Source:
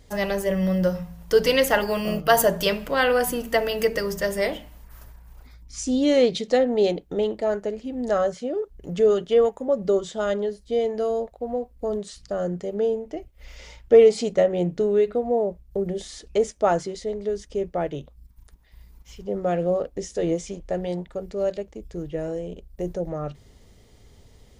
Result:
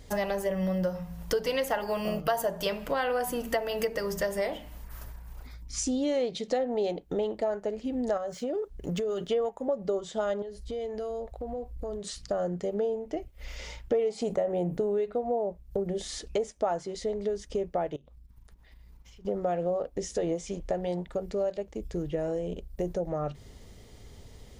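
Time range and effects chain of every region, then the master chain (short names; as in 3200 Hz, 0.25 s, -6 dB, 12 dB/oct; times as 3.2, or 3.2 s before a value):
8.17–9.28 median filter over 3 samples + high shelf 6600 Hz +5 dB + compressor, threshold -26 dBFS
10.42–12.04 resonant low shelf 130 Hz +8.5 dB, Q 1.5 + compressor 4:1, threshold -36 dBFS
14.21–14.98 gate -39 dBFS, range -6 dB + EQ curve 920 Hz 0 dB, 5400 Hz -7 dB, 11000 Hz +7 dB + fast leveller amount 50%
17.96–19.25 block floating point 7-bit + compressor 20:1, threshold -50 dBFS + high shelf 6100 Hz -8 dB
whole clip: dynamic EQ 800 Hz, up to +7 dB, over -35 dBFS, Q 1.3; compressor 4:1, threshold -31 dBFS; gain +2.5 dB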